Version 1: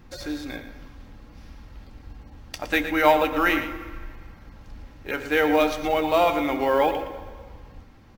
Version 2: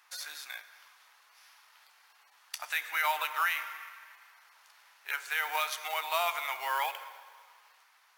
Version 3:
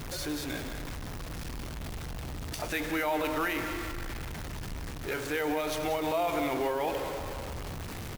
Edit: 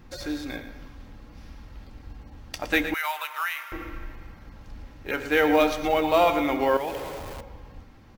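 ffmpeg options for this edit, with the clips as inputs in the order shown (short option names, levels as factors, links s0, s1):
-filter_complex "[0:a]asplit=3[s0][s1][s2];[s0]atrim=end=2.942[s3];[1:a]atrim=start=2.938:end=3.722[s4];[s1]atrim=start=3.718:end=6.772[s5];[2:a]atrim=start=6.768:end=7.412[s6];[s2]atrim=start=7.408[s7];[s3][s4]acrossfade=d=0.004:c1=hsin:c2=hsin[s8];[s8][s5]acrossfade=d=0.004:c1=hsin:c2=hsin[s9];[s9][s6]acrossfade=d=0.004:c1=hsin:c2=hsin[s10];[s10][s7]acrossfade=d=0.004:c1=hsin:c2=hsin"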